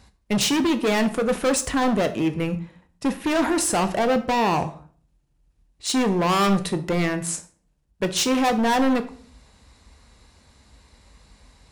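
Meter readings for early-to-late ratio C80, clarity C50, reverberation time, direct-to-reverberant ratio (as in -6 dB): 18.5 dB, 14.5 dB, 0.45 s, 9.0 dB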